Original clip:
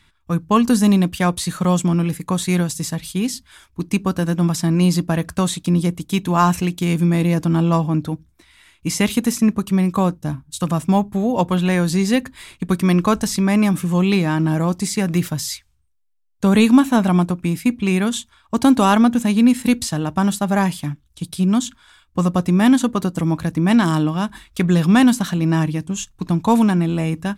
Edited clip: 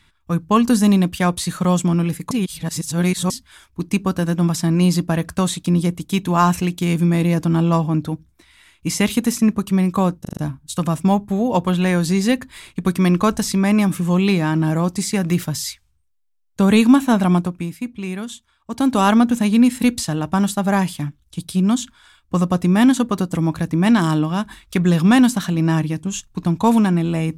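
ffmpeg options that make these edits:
-filter_complex "[0:a]asplit=9[s0][s1][s2][s3][s4][s5][s6][s7][s8];[s0]atrim=end=2.312[s9];[s1]atrim=start=2.308:end=3.302,asetpts=PTS-STARTPTS,areverse[s10];[s2]atrim=start=3.298:end=10.252[s11];[s3]atrim=start=10.208:end=10.252[s12];[s4]atrim=start=10.208:end=10.252[s13];[s5]atrim=start=10.208:end=10.252[s14];[s6]atrim=start=10.208:end=17.59,asetpts=PTS-STARTPTS,afade=t=out:st=7.002:d=0.38:silence=0.354813[s15];[s7]atrim=start=17.59:end=18.55,asetpts=PTS-STARTPTS,volume=0.355[s16];[s8]atrim=start=18.55,asetpts=PTS-STARTPTS,afade=t=in:d=0.38:silence=0.354813[s17];[s9][s10]acrossfade=d=0.004:c1=hsin:c2=hsin[s18];[s18][s11]acrossfade=d=0.004:c1=hsin:c2=hsin[s19];[s19][s12]acrossfade=d=0.004:c1=hsin:c2=hsin[s20];[s20][s13]acrossfade=d=0.004:c1=hsin:c2=hsin[s21];[s21][s14]acrossfade=d=0.004:c1=hsin:c2=hsin[s22];[s15][s16][s17]concat=n=3:v=0:a=1[s23];[s22][s23]acrossfade=d=0.004:c1=hsin:c2=hsin"

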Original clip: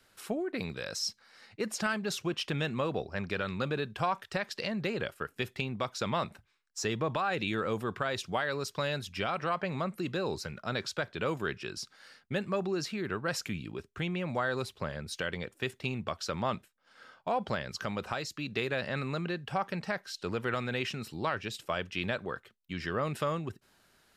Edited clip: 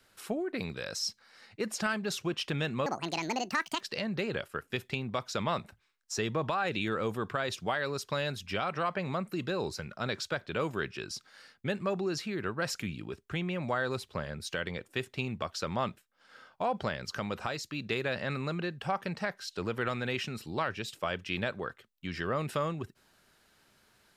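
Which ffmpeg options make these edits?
-filter_complex "[0:a]asplit=3[s0][s1][s2];[s0]atrim=end=2.864[s3];[s1]atrim=start=2.86:end=4.47,asetpts=PTS-STARTPTS,asetrate=74970,aresample=44100,atrim=end_sample=41765,asetpts=PTS-STARTPTS[s4];[s2]atrim=start=4.466[s5];[s3][s4]acrossfade=d=0.004:c1=hsin:c2=hsin[s6];[s6][s5]acrossfade=d=0.004:c1=hsin:c2=hsin"

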